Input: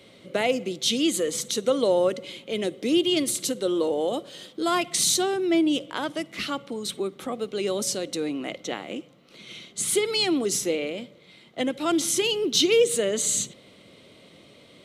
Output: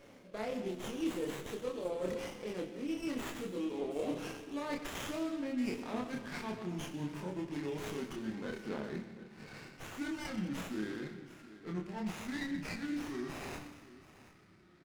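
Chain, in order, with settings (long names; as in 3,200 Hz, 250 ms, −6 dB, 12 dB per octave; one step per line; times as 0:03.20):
pitch glide at a constant tempo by −8.5 semitones starting unshifted
source passing by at 0:04.39, 10 m/s, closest 14 metres
dynamic equaliser 5,800 Hz, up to −6 dB, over −51 dBFS, Q 2.1
reversed playback
downward compressor 8 to 1, threshold −42 dBFS, peak gain reduction 20.5 dB
reversed playback
flanger 0.36 Hz, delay 3.6 ms, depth 3.3 ms, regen +71%
double-tracking delay 28 ms −2 dB
on a send: single-tap delay 728 ms −17 dB
on the sum: comb and all-pass reverb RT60 1.5 s, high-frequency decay 0.85×, pre-delay 25 ms, DRR 7.5 dB
windowed peak hold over 9 samples
level +8.5 dB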